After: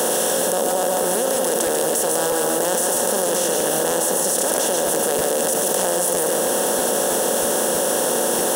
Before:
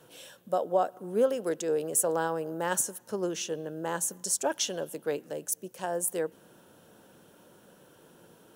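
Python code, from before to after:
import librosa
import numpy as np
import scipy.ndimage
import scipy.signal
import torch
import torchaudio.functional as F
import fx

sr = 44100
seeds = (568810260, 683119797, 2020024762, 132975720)

p1 = fx.bin_compress(x, sr, power=0.2)
p2 = fx.high_shelf(p1, sr, hz=12000.0, db=8.5)
p3 = fx.hum_notches(p2, sr, base_hz=50, count=3)
p4 = p3 + fx.echo_single(p3, sr, ms=143, db=-4.5, dry=0)
p5 = fx.buffer_crackle(p4, sr, first_s=0.38, period_s=0.32, block=512, kind='repeat')
p6 = fx.env_flatten(p5, sr, amount_pct=100)
y = p6 * 10.0 ** (-5.5 / 20.0)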